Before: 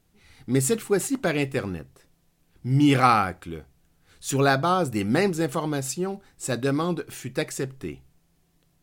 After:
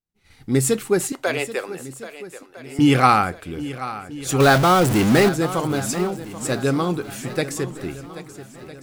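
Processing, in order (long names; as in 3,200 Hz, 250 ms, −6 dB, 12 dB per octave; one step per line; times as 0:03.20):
0:04.40–0:05.29: converter with a step at zero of −20.5 dBFS
downward expander −49 dBFS
0:01.12–0:02.79: high-pass filter 410 Hz 24 dB per octave
feedback echo with a long and a short gap by turns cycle 1,305 ms, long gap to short 1.5 to 1, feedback 37%, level −14.5 dB
level +3.5 dB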